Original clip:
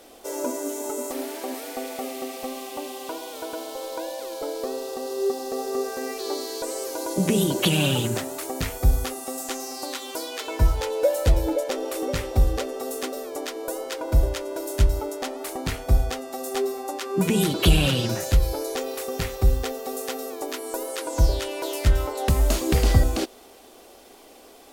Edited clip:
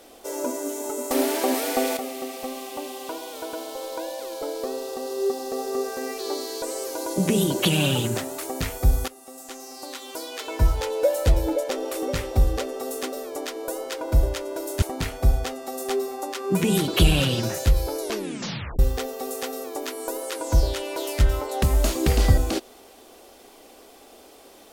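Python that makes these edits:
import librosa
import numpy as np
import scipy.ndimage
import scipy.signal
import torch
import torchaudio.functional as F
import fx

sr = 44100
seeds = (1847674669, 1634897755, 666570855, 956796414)

y = fx.edit(x, sr, fx.clip_gain(start_s=1.11, length_s=0.86, db=9.0),
    fx.fade_in_from(start_s=9.08, length_s=1.62, floor_db=-15.0),
    fx.cut(start_s=14.82, length_s=0.66),
    fx.tape_stop(start_s=18.67, length_s=0.78), tone=tone)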